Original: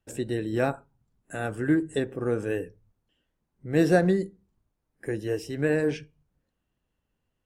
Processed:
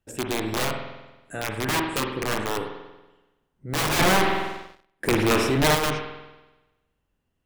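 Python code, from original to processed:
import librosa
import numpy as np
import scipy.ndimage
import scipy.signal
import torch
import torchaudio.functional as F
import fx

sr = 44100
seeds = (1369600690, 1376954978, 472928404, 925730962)

y = (np.mod(10.0 ** (21.0 / 20.0) * x + 1.0, 2.0) - 1.0) / 10.0 ** (21.0 / 20.0)
y = fx.rev_spring(y, sr, rt60_s=1.1, pass_ms=(47,), chirp_ms=55, drr_db=3.5)
y = fx.leveller(y, sr, passes=3, at=(3.99, 5.75))
y = F.gain(torch.from_numpy(y), 1.0).numpy()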